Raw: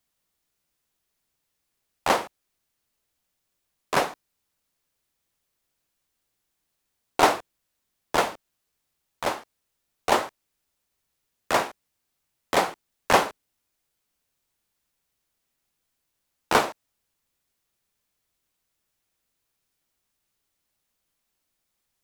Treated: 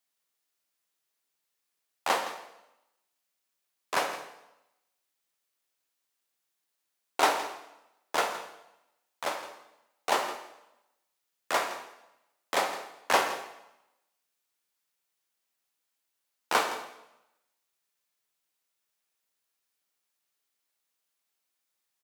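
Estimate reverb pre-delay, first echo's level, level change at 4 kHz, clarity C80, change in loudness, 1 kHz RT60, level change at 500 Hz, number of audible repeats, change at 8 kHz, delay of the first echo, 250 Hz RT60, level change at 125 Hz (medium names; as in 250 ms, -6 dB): 6 ms, -14.5 dB, -3.0 dB, 9.5 dB, -5.5 dB, 0.90 s, -6.5 dB, 1, -3.0 dB, 165 ms, 0.90 s, under -15 dB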